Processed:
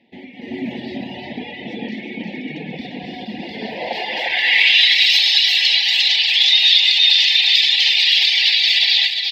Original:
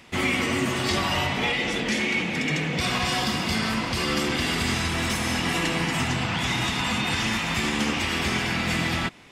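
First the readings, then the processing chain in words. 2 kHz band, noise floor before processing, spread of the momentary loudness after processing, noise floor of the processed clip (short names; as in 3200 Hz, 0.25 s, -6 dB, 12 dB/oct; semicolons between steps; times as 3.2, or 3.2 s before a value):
+7.0 dB, -29 dBFS, 20 LU, -34 dBFS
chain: rattling part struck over -27 dBFS, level -25 dBFS; EQ curve 360 Hz 0 dB, 630 Hz +5 dB, 3900 Hz +15 dB, 6900 Hz -8 dB, 10000 Hz -14 dB, 14000 Hz +12 dB; limiter -13 dBFS, peak gain reduction 10.5 dB; band-pass sweep 230 Hz -> 4300 Hz, 3.37–4.98; echo 0.351 s -4 dB; reverb removal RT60 1.1 s; elliptic band-stop 870–1800 Hz, stop band 80 dB; tone controls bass -10 dB, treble +6 dB; analogue delay 0.107 s, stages 4096, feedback 74%, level -14.5 dB; AGC gain up to 10.5 dB; gain +4 dB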